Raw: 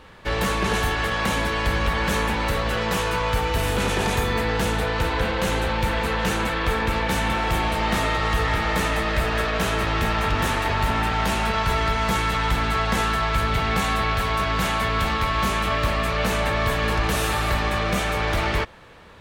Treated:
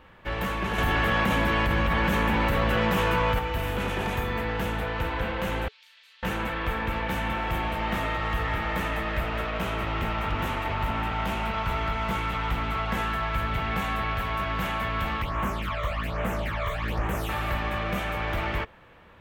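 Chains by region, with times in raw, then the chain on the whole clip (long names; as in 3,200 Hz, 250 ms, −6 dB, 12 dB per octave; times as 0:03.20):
0:00.78–0:03.39: parametric band 210 Hz +3.5 dB 1.6 octaves + envelope flattener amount 100%
0:05.68–0:06.23: four-pole ladder band-pass 5,400 Hz, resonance 40% + double-tracking delay 38 ms −3.5 dB
0:09.21–0:12.91: notch filter 1,700 Hz, Q 9.8 + highs frequency-modulated by the lows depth 0.17 ms
0:15.22–0:17.29: all-pass phaser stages 12, 1.2 Hz, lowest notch 260–4,700 Hz + high-shelf EQ 4,400 Hz +4.5 dB + highs frequency-modulated by the lows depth 0.39 ms
whole clip: flat-topped bell 6,400 Hz −9.5 dB; notch filter 430 Hz, Q 13; level −5.5 dB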